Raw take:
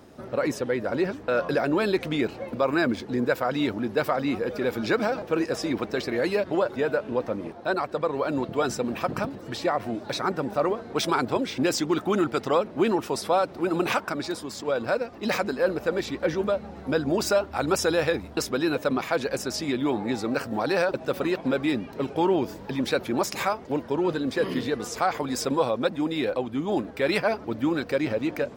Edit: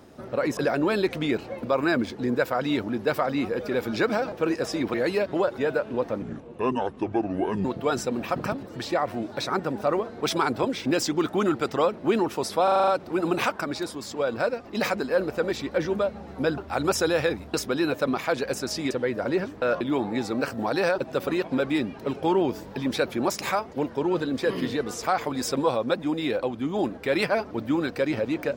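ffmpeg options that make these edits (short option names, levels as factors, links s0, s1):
-filter_complex "[0:a]asplit=14[s0][s1][s2][s3][s4][s5][s6][s7][s8][s9][s10][s11][s12][s13];[s0]atrim=end=0.572[s14];[s1]atrim=start=1.468:end=5.842[s15];[s2]atrim=start=6.118:end=7.404[s16];[s3]atrim=start=7.4:end=8.37,asetpts=PTS-STARTPTS,asetrate=29988,aresample=44100,atrim=end_sample=62907,asetpts=PTS-STARTPTS[s17];[s4]atrim=start=8.366:end=13.402[s18];[s5]atrim=start=13.358:end=13.402[s19];[s6]atrim=start=13.358:end=13.402[s20];[s7]atrim=start=13.358:end=13.402[s21];[s8]atrim=start=13.358:end=13.402[s22];[s9]atrim=start=13.358:end=13.402[s23];[s10]atrim=start=13.358:end=17.062[s24];[s11]atrim=start=17.408:end=19.742[s25];[s12]atrim=start=0.568:end=1.472[s26];[s13]atrim=start=19.738[s27];[s14][s15]acrossfade=d=0.004:c1=hsin:c2=hsin[s28];[s28][s16]acrossfade=d=0.004:c1=hsin:c2=hsin[s29];[s29][s17]acrossfade=d=0.004:c1=hsin:c2=hsin[s30];[s30][s18]acrossfade=d=0.004:c1=hsin:c2=hsin[s31];[s31][s19]acrossfade=d=0.004:c1=hsin:c2=hsin[s32];[s32][s20]acrossfade=d=0.004:c1=hsin:c2=hsin[s33];[s33][s21]acrossfade=d=0.004:c1=hsin:c2=hsin[s34];[s34][s22]acrossfade=d=0.004:c1=hsin:c2=hsin[s35];[s35][s23]acrossfade=d=0.004:c1=hsin:c2=hsin[s36];[s36][s24]acrossfade=d=0.004:c1=hsin:c2=hsin[s37];[s37][s25]acrossfade=d=0.004:c1=hsin:c2=hsin[s38];[s38][s26]acrossfade=d=0.004:c1=hsin:c2=hsin[s39];[s39][s27]acrossfade=d=0.004:c1=hsin:c2=hsin"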